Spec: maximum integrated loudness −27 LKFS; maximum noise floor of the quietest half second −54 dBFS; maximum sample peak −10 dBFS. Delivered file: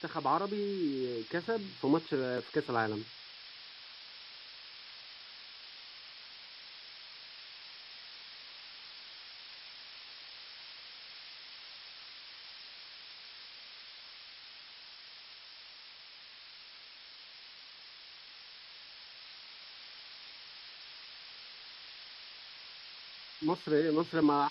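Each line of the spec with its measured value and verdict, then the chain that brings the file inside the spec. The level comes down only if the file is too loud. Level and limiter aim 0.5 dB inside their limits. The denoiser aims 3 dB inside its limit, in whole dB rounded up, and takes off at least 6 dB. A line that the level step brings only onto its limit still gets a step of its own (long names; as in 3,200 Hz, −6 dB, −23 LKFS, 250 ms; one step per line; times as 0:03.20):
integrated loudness −40.0 LKFS: in spec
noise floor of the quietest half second −53 dBFS: out of spec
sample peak −17.0 dBFS: in spec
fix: broadband denoise 6 dB, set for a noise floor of −53 dBFS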